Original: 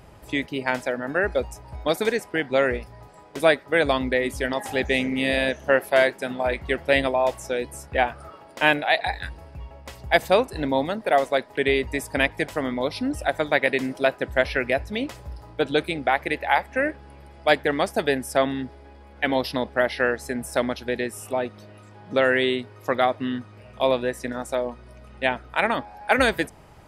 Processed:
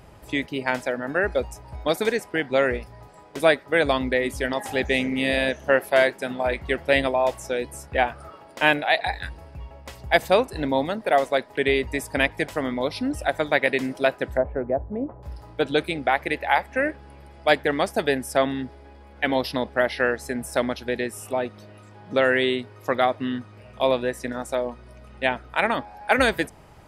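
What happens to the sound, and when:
0:14.37–0:15.23: low-pass filter 1,000 Hz 24 dB per octave

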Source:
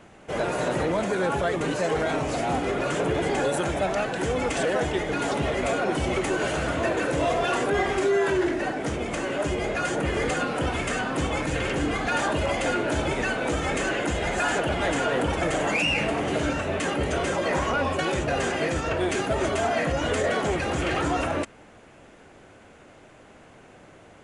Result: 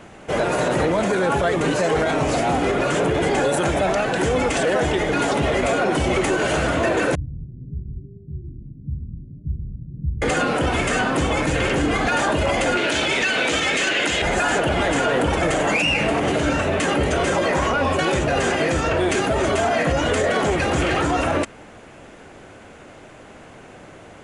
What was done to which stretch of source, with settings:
0:07.15–0:10.22: inverse Chebyshev low-pass filter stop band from 870 Hz, stop band 80 dB
0:12.77–0:14.22: meter weighting curve D
whole clip: brickwall limiter −19.5 dBFS; level +7.5 dB

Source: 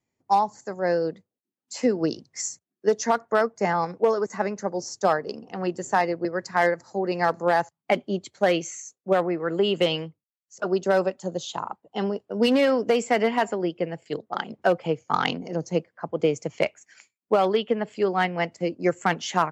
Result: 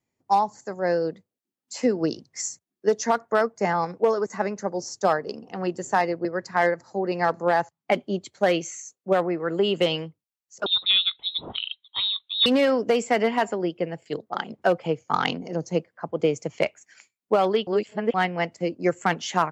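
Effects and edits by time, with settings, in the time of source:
0:06.19–0:07.92: high-shelf EQ 6,800 Hz −7.5 dB
0:10.66–0:12.46: voice inversion scrambler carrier 4,000 Hz
0:17.67–0:18.14: reverse

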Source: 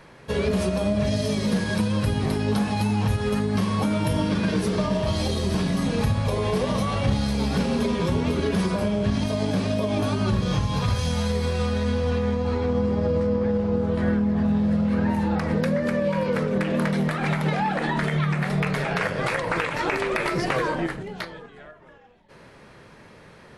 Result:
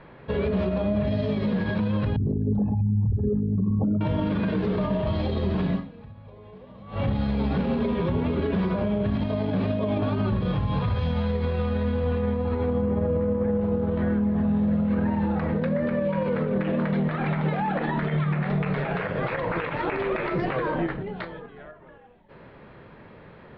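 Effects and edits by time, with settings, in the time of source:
0:02.16–0:04.01: spectral envelope exaggerated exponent 3
0:05.75–0:07.00: duck −23.5 dB, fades 0.48 s exponential
0:12.82–0:13.61: low-pass filter 2,800 Hz
whole clip: Butterworth low-pass 3,900 Hz 36 dB per octave; brickwall limiter −18.5 dBFS; high-shelf EQ 2,100 Hz −9 dB; level +2 dB

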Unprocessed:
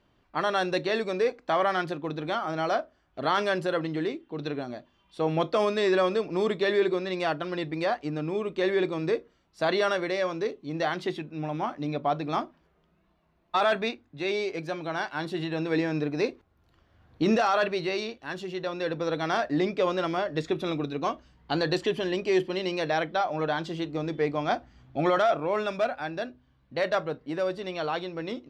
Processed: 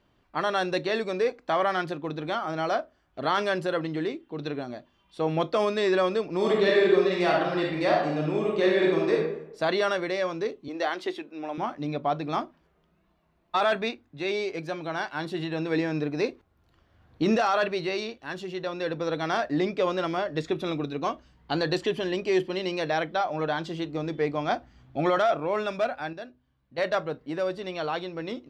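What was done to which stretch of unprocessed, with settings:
0:06.37–0:09.14: thrown reverb, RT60 0.81 s, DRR −2.5 dB
0:10.68–0:11.58: high-pass filter 280 Hz 24 dB per octave
0:26.13–0:26.78: clip gain −7 dB

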